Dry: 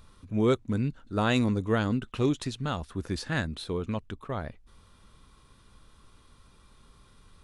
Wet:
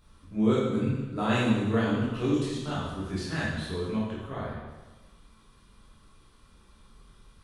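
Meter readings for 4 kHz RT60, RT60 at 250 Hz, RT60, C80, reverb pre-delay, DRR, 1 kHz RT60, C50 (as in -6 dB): 1.1 s, 1.2 s, 1.2 s, 2.5 dB, 7 ms, -8.5 dB, 1.2 s, -1.0 dB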